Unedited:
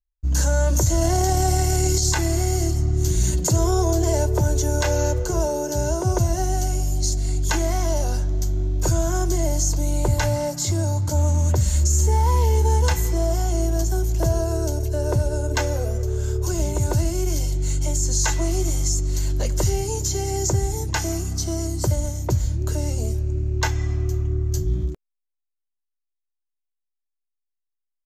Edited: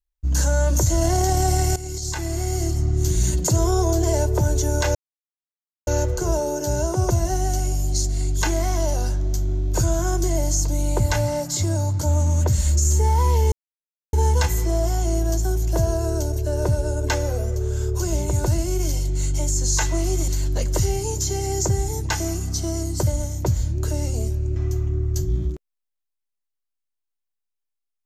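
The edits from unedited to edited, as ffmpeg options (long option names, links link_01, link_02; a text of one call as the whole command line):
ffmpeg -i in.wav -filter_complex "[0:a]asplit=6[link_01][link_02][link_03][link_04][link_05][link_06];[link_01]atrim=end=1.76,asetpts=PTS-STARTPTS,afade=type=out:start_time=1.756:duration=0.004:curve=hsin:silence=0.188365[link_07];[link_02]atrim=start=1.76:end=4.95,asetpts=PTS-STARTPTS,afade=type=in:duration=1.11:silence=0.188365,afade=type=out:start_time=3.186:duration=0.004:curve=hsin,apad=pad_dur=0.92[link_08];[link_03]atrim=start=4.95:end=12.6,asetpts=PTS-STARTPTS,afade=type=in:duration=0.004:curve=hsin,afade=type=out:start_time=7.646:duration=0.004:curve=hsin,apad=pad_dur=0.61[link_09];[link_04]atrim=start=12.6:end=18.752,asetpts=PTS-STARTPTS,afade=type=in:duration=0.004:curve=hsin[link_10];[link_05]atrim=start=19.118:end=23.402[link_11];[link_06]atrim=start=23.938[link_12];[link_07][link_08][link_09][link_10]concat=n=4:v=0:a=1[link_13];[link_13][link_11]acrossfade=duration=0.004:curve1=hsin:curve2=hsin[link_14];[link_14][link_12]acrossfade=duration=0.004:curve1=hsin:curve2=hsin" out.wav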